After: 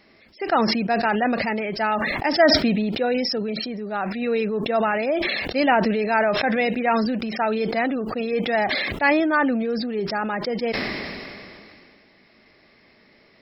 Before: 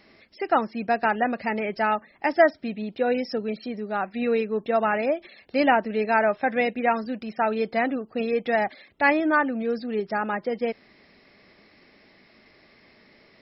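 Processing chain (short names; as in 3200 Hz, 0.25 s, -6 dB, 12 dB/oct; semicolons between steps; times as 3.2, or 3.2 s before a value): dynamic EQ 4700 Hz, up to +5 dB, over -42 dBFS, Q 0.92; sustainer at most 24 dB/s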